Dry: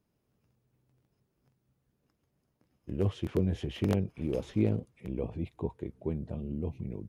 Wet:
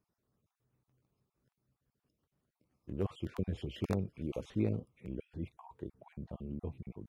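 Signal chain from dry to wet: random holes in the spectrogram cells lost 33%; peaking EQ 1.2 kHz +4.5 dB 0.65 oct; trim -5 dB

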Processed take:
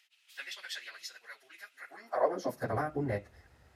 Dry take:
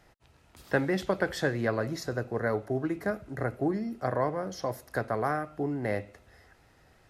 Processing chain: plain phase-vocoder stretch 0.53×; high-pass sweep 2.8 kHz -> 63 Hz, 1.78–2.84 s

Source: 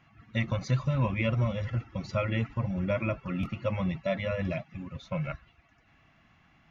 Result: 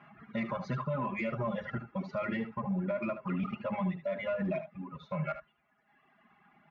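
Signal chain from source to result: high-pass 150 Hz 12 dB/octave; reverb removal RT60 1.8 s; low-pass 1.2 kHz 12 dB/octave; tilt shelf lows -5 dB, about 730 Hz; comb 4.9 ms, depth 76%; gain riding within 4 dB 0.5 s; peak limiter -30 dBFS, peak gain reduction 10.5 dB; saturation -27 dBFS, distortion -28 dB; on a send: delay 75 ms -11 dB; on the sum: trim +5 dB

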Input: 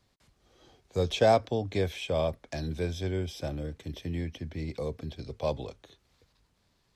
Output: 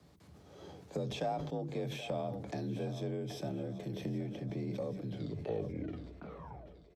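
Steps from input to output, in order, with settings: tape stop on the ending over 1.95 s; tilt shelf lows +5.5 dB, about 1.2 kHz; hum notches 50/100/150 Hz; harmonic-percussive split percussive -15 dB; treble shelf 7.4 kHz +5 dB; comb 7.5 ms, depth 34%; harmonic-percussive split harmonic -11 dB; compression 4:1, threshold -52 dBFS, peak gain reduction 24.5 dB; Chebyshev shaper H 6 -33 dB, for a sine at -37.5 dBFS; on a send: two-band feedback delay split 360 Hz, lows 100 ms, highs 776 ms, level -14 dB; on the sum: frequency shift +42 Hz; decay stretcher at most 42 dB/s; trim +13.5 dB

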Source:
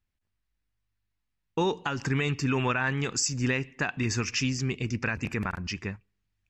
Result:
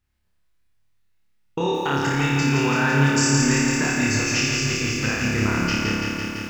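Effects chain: compression, threshold -28 dBFS, peak gain reduction 6.5 dB; flutter echo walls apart 4.9 m, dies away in 1 s; on a send at -18 dB: reverberation RT60 2.3 s, pre-delay 77 ms; on the sum: bit-crushed delay 168 ms, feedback 80%, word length 9-bit, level -4 dB; trim +4.5 dB

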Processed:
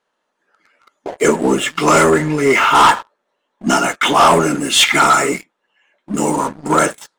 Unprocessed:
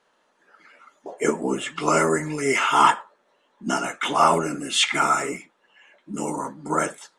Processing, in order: 2.10–2.75 s: treble shelf 3.9 kHz -11 dB; waveshaping leveller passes 3

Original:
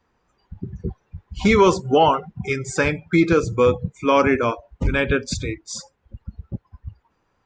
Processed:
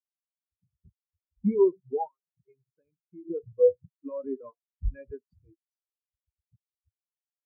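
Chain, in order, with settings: 2.07–3.25 s: compression 6:1, threshold -24 dBFS, peak gain reduction 12 dB; peak limiter -11.5 dBFS, peak gain reduction 6.5 dB; spectral contrast expander 4:1

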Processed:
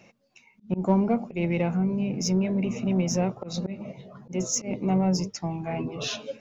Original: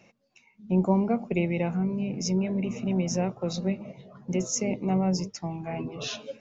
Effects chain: slow attack 148 ms; in parallel at -7 dB: saturation -26 dBFS, distortion -10 dB

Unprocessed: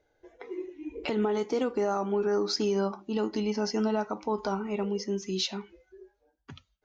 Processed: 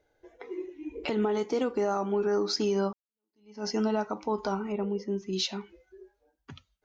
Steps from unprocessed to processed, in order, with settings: 2.93–3.67 s: fade in exponential; 4.72–5.33 s: low-pass 1.2 kHz 6 dB/octave

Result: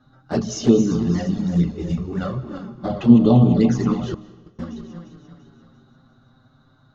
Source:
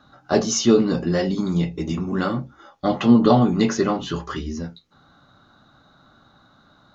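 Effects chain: backward echo that repeats 172 ms, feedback 67%, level -8.5 dB; bass shelf 330 Hz +12 dB; 4.14–4.59 s: gate -13 dBFS, range -34 dB; touch-sensitive flanger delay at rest 8 ms, full sweep at -4.5 dBFS; reverberation RT60 1.1 s, pre-delay 115 ms, DRR 17.5 dB; trim -5.5 dB

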